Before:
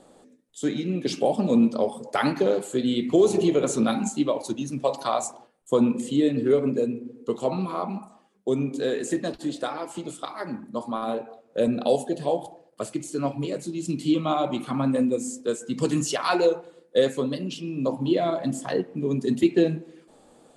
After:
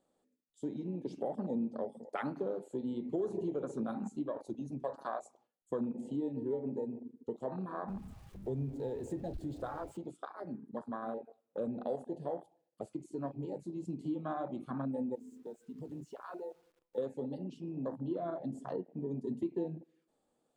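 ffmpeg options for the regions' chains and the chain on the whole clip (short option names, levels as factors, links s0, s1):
-filter_complex "[0:a]asettb=1/sr,asplit=3[s0][s1][s2];[s0]atrim=end=7.884[s3];[s1]atrim=start=7.88:end=9.97,asetpts=PTS-STARTPTS,afade=t=in:d=0.004:c=qsin,afade=t=out:st=2.086:d=0.004:c=qsin,aeval=exprs='val(0)+0.5*0.02*sgn(val(0))':c=same,lowshelf=f=150:t=q:w=1.5:g=12.5[s4];[s2]atrim=start=9.966[s5];[s3][s4]acrossfade=d=0.004:c1=hsin:c2=qsin[s6];[s6][s5]acrossfade=d=0.004:c1=qsin:c2=hsin,asettb=1/sr,asplit=3[s7][s8][s9];[s7]atrim=end=15.154[s10];[s8]atrim=start=15.15:end=16.98,asetpts=PTS-STARTPTS,afade=t=in:d=0.004:c=qsin,afade=t=out:st=1.826:d=0.004:c=qsin,acompressor=threshold=0.0158:ratio=3:attack=3.2:release=140:knee=1:detection=peak,equalizer=f=8100:w=0.4:g=-5,acrusher=bits=9:dc=4:mix=0:aa=0.000001[s11];[s9]atrim=start=16.976[s12];[s10][s11]acrossfade=d=0.004:c1=hsin:c2=qsin[s13];[s13][s12]acrossfade=d=0.004:c1=qsin:c2=hsin,afwtdn=0.0355,acompressor=threshold=0.0316:ratio=2,volume=0.398"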